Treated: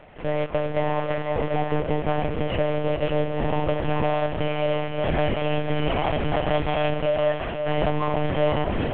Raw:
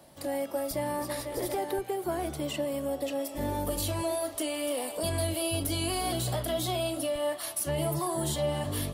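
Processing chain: CVSD coder 16 kbps; echo that smears into a reverb 500 ms, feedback 41%, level -6 dB; monotone LPC vocoder at 8 kHz 150 Hz; trim +8 dB

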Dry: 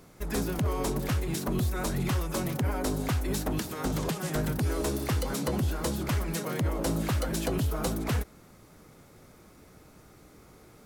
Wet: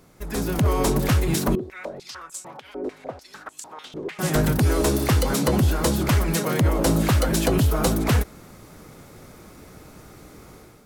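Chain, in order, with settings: level rider gain up to 9 dB; 1.55–4.19 s: step-sequenced band-pass 6.7 Hz 380–7700 Hz

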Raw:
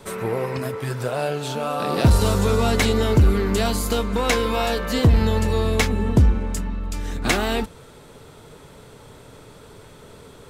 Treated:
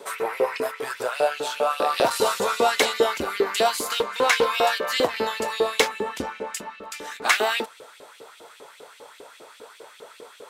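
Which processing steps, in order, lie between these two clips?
LFO high-pass saw up 5 Hz 350–3300 Hz; 3.69–4.46 s: loudspeaker Doppler distortion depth 0.26 ms

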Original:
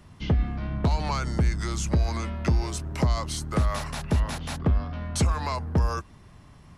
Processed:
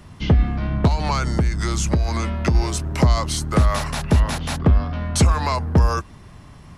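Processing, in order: 0.87–2.55 s: compression 4:1, threshold -23 dBFS, peak gain reduction 5.5 dB; trim +7.5 dB

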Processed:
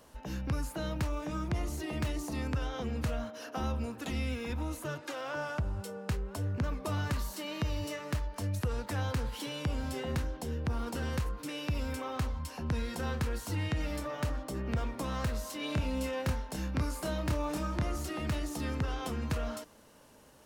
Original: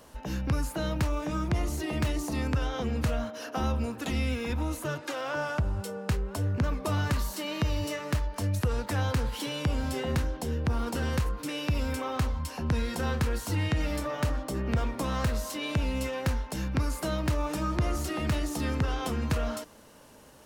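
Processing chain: 15.57–17.83 s: doubling 27 ms -4.5 dB; trim -5 dB

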